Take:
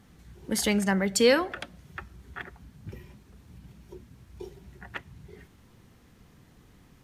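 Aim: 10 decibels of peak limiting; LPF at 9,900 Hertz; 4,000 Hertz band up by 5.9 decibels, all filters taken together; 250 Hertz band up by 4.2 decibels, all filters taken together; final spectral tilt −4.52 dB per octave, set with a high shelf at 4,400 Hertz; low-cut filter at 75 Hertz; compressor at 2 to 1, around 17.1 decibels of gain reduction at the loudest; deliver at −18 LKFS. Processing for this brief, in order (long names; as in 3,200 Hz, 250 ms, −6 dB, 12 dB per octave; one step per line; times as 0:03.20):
high-pass filter 75 Hz
low-pass filter 9,900 Hz
parametric band 250 Hz +5.5 dB
parametric band 4,000 Hz +6 dB
high-shelf EQ 4,400 Hz +3 dB
downward compressor 2 to 1, threshold −46 dBFS
level +28.5 dB
brickwall limiter −4 dBFS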